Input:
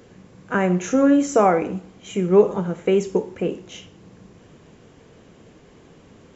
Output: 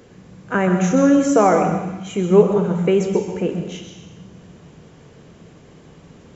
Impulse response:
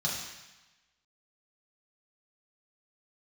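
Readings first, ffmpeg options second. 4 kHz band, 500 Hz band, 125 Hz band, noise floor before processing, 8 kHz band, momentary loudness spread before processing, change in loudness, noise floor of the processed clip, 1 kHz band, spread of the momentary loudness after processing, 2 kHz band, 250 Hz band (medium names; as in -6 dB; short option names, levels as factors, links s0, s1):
+2.5 dB, +2.5 dB, +5.5 dB, -50 dBFS, no reading, 13 LU, +2.5 dB, -47 dBFS, +3.0 dB, 12 LU, +2.5 dB, +3.0 dB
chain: -filter_complex "[0:a]asplit=2[s0][s1];[1:a]atrim=start_sample=2205,lowshelf=f=75:g=11,adelay=125[s2];[s1][s2]afir=irnorm=-1:irlink=0,volume=0.237[s3];[s0][s3]amix=inputs=2:normalize=0,volume=1.19"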